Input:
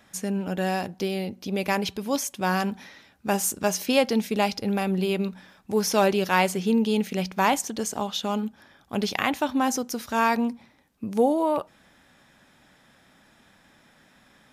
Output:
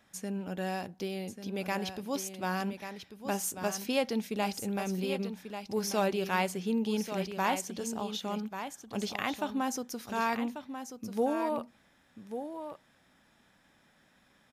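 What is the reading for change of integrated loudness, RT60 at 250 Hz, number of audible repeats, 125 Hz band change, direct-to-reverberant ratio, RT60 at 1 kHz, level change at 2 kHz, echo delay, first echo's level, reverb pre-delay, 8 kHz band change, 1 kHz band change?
-8.5 dB, no reverb, 1, -8.0 dB, no reverb, no reverb, -8.0 dB, 1140 ms, -9.0 dB, no reverb, -8.0 dB, -8.0 dB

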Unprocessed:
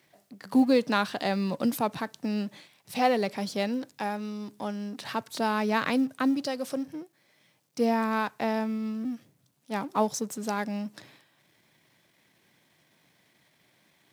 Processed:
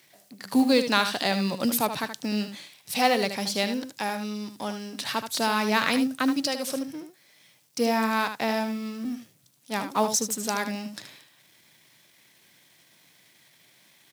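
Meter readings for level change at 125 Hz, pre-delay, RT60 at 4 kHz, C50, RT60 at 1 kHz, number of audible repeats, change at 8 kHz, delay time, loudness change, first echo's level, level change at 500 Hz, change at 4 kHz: +0.5 dB, no reverb, no reverb, no reverb, no reverb, 1, +10.5 dB, 76 ms, +2.5 dB, -9.0 dB, +1.0 dB, +9.0 dB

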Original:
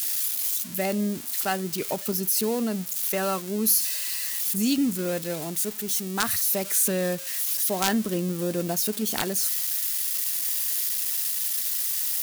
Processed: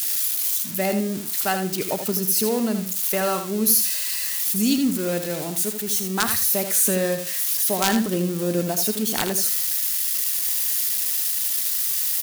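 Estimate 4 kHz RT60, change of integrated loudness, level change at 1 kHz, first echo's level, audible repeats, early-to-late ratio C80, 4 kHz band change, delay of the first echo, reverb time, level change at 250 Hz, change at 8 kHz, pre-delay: no reverb, +3.5 dB, +3.5 dB, -8.0 dB, 2, no reverb, +3.5 dB, 80 ms, no reverb, +3.5 dB, +3.5 dB, no reverb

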